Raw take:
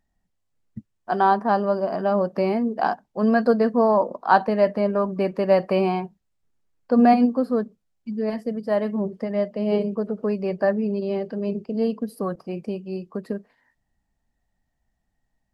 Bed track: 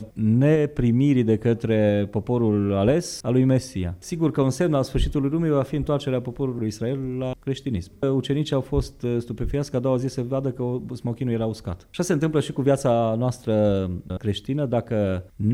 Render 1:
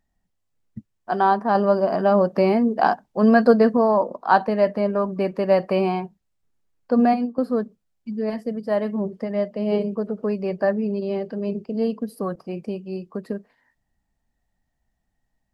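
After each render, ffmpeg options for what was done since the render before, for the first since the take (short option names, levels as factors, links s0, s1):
-filter_complex "[0:a]asplit=4[s0][s1][s2][s3];[s0]atrim=end=1.552[s4];[s1]atrim=start=1.548:end=3.772,asetpts=PTS-STARTPTS,volume=1.58[s5];[s2]atrim=start=3.768:end=7.38,asetpts=PTS-STARTPTS,afade=t=out:st=3.162:d=0.45:silence=0.211349[s6];[s3]atrim=start=7.38,asetpts=PTS-STARTPTS,afade=t=in:d=0.004:c=hsin:silence=0.211349[s7];[s4][s5]acrossfade=d=0.004:c1=hsin:c2=hsin[s8];[s6][s7]concat=n=2:v=0:a=1[s9];[s8][s9]acrossfade=d=0.004:c1=hsin:c2=hsin"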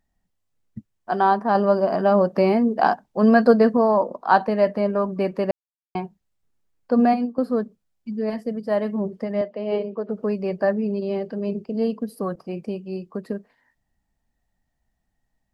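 -filter_complex "[0:a]asettb=1/sr,asplit=3[s0][s1][s2];[s0]atrim=end=9.414[s3];[s1]atrim=start=9.41:end=10.09,asetpts=PTS-STARTPTS,afade=t=in:d=0.004:c=qsin,afade=t=out:st=0.676:d=0.004:c=qsin,highpass=310,lowpass=3900[s4];[s2]atrim=start=10.086[s5];[s3][s4]acrossfade=d=0.004:c1=hsin:c2=qsin[s6];[s6][s5]acrossfade=d=0.004:c1=qsin:c2=hsin,asplit=3[s7][s8][s9];[s7]atrim=end=5.51,asetpts=PTS-STARTPTS,afade=t=out:st=5.506:d=0.004:c=hsin[s10];[s8]atrim=start=5.51:end=5.95,asetpts=PTS-STARTPTS,volume=0[s11];[s9]atrim=start=5.95,asetpts=PTS-STARTPTS,afade=t=in:d=0.004:c=hsin[s12];[s10][s11][s12]concat=n=3:v=0:a=1"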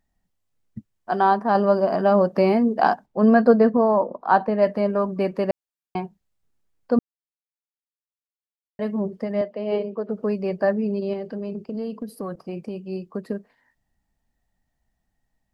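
-filter_complex "[0:a]asplit=3[s0][s1][s2];[s0]afade=t=out:st=3.05:d=0.02[s3];[s1]highshelf=f=3100:g=-12,afade=t=in:st=3.05:d=0.02,afade=t=out:st=4.61:d=0.02[s4];[s2]afade=t=in:st=4.61:d=0.02[s5];[s3][s4][s5]amix=inputs=3:normalize=0,asettb=1/sr,asplit=3[s6][s7][s8];[s6]atrim=end=11.134[s9];[s7]atrim=start=11.13:end=12.85,asetpts=PTS-STARTPTS,afade=t=in:d=0.004:c=qsin,afade=t=out:st=1.716:d=0.004:c=qsin,acompressor=threshold=0.0501:ratio=4:attack=3.2:release=140:knee=1:detection=peak[s10];[s8]atrim=start=12.846[s11];[s9][s10]acrossfade=d=0.004:c1=hsin:c2=qsin[s12];[s12][s11]acrossfade=d=0.004:c1=qsin:c2=hsin,asplit=3[s13][s14][s15];[s13]atrim=end=6.99,asetpts=PTS-STARTPTS,afade=t=out:st=6.986:d=0.004:c=hsin[s16];[s14]atrim=start=6.99:end=8.79,asetpts=PTS-STARTPTS,volume=0[s17];[s15]atrim=start=8.79,asetpts=PTS-STARTPTS,afade=t=in:d=0.004:c=hsin[s18];[s16][s17][s18]concat=n=3:v=0:a=1"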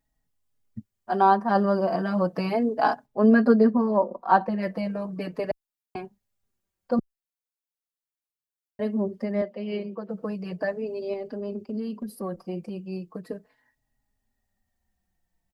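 -filter_complex "[0:a]crystalizer=i=0.5:c=0,asplit=2[s0][s1];[s1]adelay=4.2,afreqshift=-0.37[s2];[s0][s2]amix=inputs=2:normalize=1"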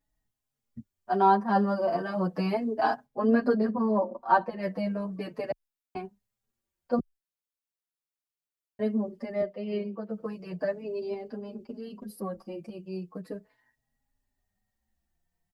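-filter_complex "[0:a]asplit=2[s0][s1];[s1]adelay=7.7,afreqshift=0.83[s2];[s0][s2]amix=inputs=2:normalize=1"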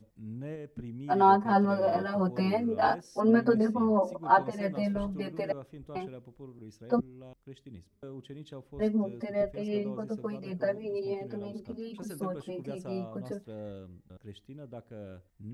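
-filter_complex "[1:a]volume=0.0794[s0];[0:a][s0]amix=inputs=2:normalize=0"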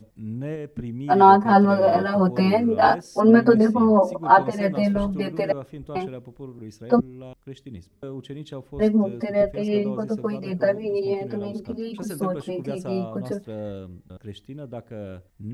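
-af "volume=2.82,alimiter=limit=0.794:level=0:latency=1"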